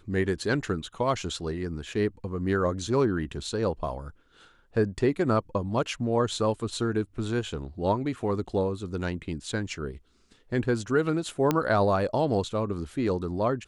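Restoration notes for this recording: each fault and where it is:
11.51 s: pop -10 dBFS

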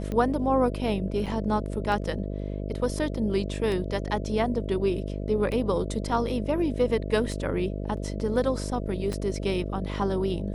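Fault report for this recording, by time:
buzz 50 Hz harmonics 13 -32 dBFS
tick 33 1/3 rpm -20 dBFS
1.26–1.27 s: dropout 5.1 ms
7.97 s: dropout 3.2 ms
9.13 s: pop -20 dBFS

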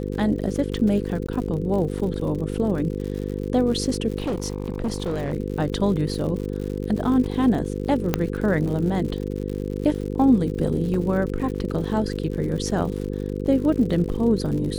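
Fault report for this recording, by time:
buzz 50 Hz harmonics 10 -28 dBFS
crackle 98 per s -31 dBFS
1.27–1.28 s: dropout 14 ms
4.18–5.34 s: clipped -21 dBFS
8.14 s: pop -6 dBFS
10.94 s: dropout 3.7 ms

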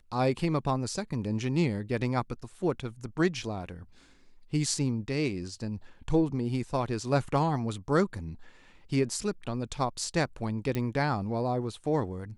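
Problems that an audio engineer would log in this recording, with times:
10.75 s: pop -18 dBFS

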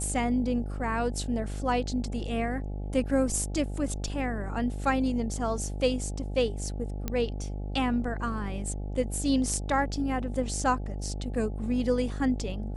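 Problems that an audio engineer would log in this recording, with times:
buzz 50 Hz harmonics 17 -34 dBFS
7.08 s: pop -16 dBFS

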